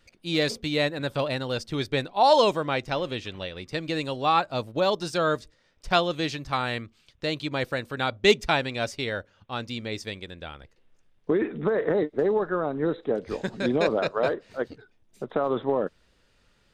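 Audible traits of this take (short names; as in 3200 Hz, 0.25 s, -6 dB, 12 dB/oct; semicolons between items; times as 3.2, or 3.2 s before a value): noise floor -65 dBFS; spectral tilt -3.0 dB/oct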